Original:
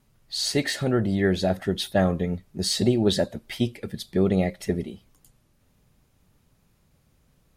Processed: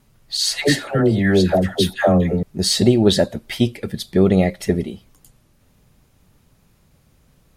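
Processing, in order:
0:00.37–0:02.43: all-pass dispersion lows, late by 138 ms, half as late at 780 Hz
level +7 dB

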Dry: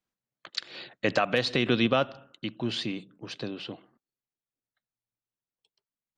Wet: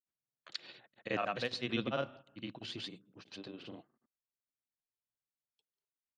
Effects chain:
granular cloud 98 ms, grains 20 per second, pitch spread up and down by 0 semitones
level −9 dB

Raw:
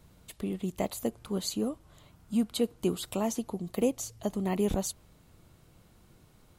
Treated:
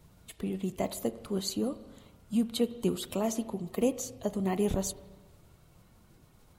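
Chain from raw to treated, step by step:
spectral magnitudes quantised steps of 15 dB
spring reverb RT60 1.3 s, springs 31/42 ms, chirp 50 ms, DRR 13.5 dB

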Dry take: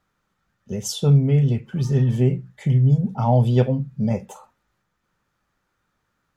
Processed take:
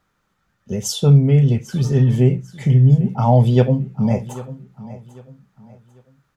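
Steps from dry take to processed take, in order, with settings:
repeating echo 795 ms, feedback 32%, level −17.5 dB
level +4 dB

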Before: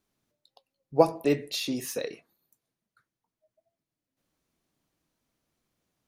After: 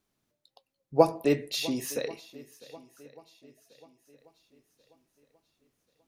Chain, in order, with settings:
feedback echo with a long and a short gap by turns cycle 1,087 ms, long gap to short 1.5 to 1, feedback 38%, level −20 dB

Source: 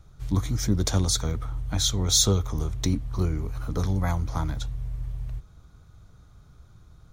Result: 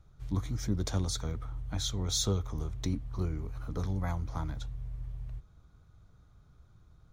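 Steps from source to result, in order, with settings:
high-shelf EQ 5,000 Hz −6.5 dB
level −7.5 dB

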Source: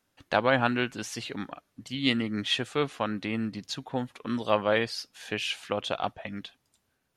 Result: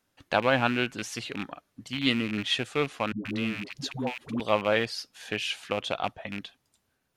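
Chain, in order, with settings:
loose part that buzzes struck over −37 dBFS, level −24 dBFS
0:03.12–0:04.40: all-pass dispersion highs, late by 134 ms, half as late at 360 Hz

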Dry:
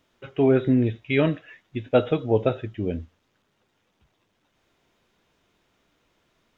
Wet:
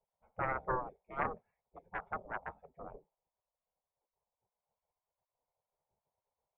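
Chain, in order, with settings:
formant resonators in series u
harmonic generator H 4 −17 dB, 6 −14 dB, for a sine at −16.5 dBFS
gate on every frequency bin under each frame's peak −20 dB weak
level +5.5 dB

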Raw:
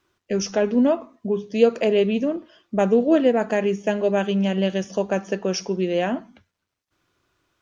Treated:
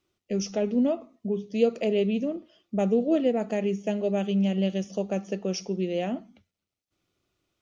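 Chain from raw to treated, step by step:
thirty-one-band graphic EQ 200 Hz +4 dB, 1,000 Hz −10 dB, 1,600 Hz −12 dB
level −6 dB

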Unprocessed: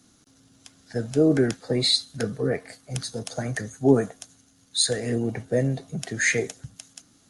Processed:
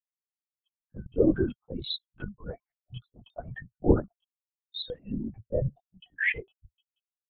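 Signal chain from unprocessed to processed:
spectral dynamics exaggerated over time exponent 3
0:05.68–0:06.30: high-pass filter 570 Hz 12 dB per octave
linear-prediction vocoder at 8 kHz whisper

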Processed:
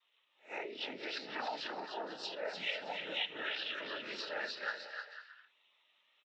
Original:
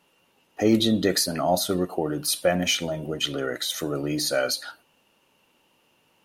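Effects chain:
peak hold with a rise ahead of every peak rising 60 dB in 0.37 s
cochlear-implant simulation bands 12
downward compressor 12 to 1, threshold −34 dBFS, peak gain reduction 20 dB
resonant band-pass 2,500 Hz, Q 0.83
treble cut that deepens with the level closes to 2,500 Hz, closed at −38 dBFS
bouncing-ball delay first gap 300 ms, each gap 0.65×, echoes 5
every bin expanded away from the loudest bin 1.5 to 1
level +5.5 dB

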